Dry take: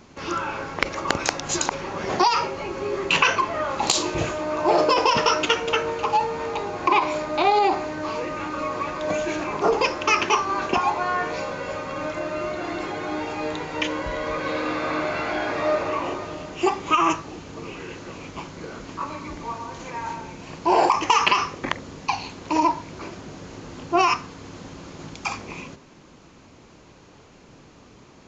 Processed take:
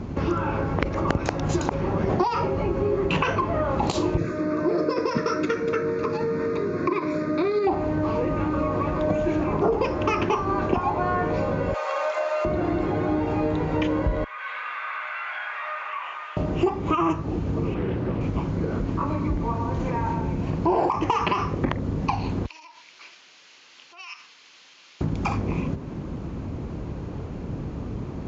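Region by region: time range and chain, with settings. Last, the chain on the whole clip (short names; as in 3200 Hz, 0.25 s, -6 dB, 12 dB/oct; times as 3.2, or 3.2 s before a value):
4.17–7.67 HPF 200 Hz + fixed phaser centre 3000 Hz, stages 6
11.74–12.45 steep high-pass 570 Hz + high shelf 2900 Hz +9 dB
14.24–16.37 HPF 1300 Hz 24 dB/oct + compressor 2:1, threshold -36 dBFS + band shelf 5400 Hz -12 dB 1.1 oct
17.74–18.21 air absorption 150 m + frequency shift +17 Hz + Doppler distortion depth 0.24 ms
22.46–25.01 compressor 10:1, threshold -28 dBFS + Butterworth band-pass 4100 Hz, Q 1
whole clip: HPF 53 Hz; tilt -4.5 dB/oct; compressor 3:1, threshold -32 dBFS; gain +8 dB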